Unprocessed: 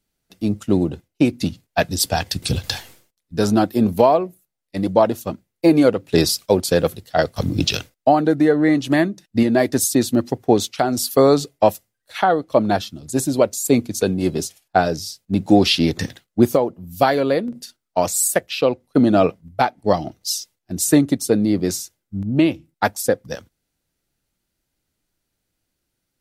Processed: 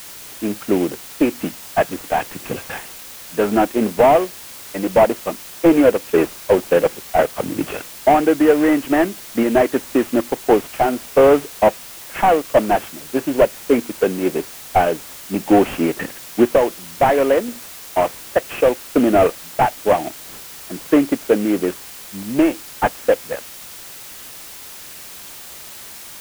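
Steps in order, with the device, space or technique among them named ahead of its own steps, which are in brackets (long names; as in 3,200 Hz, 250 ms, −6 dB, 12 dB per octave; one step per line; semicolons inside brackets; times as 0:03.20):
army field radio (band-pass filter 340–2,800 Hz; variable-slope delta modulation 16 kbit/s; white noise bed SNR 18 dB)
level +5.5 dB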